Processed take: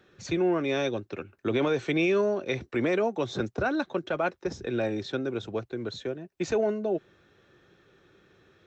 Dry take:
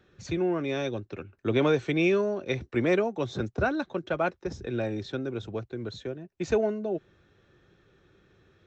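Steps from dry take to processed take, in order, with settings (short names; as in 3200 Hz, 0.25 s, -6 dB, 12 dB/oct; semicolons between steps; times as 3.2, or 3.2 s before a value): low shelf 120 Hz -11.5 dB; limiter -21 dBFS, peak gain reduction 7 dB; gain +3.5 dB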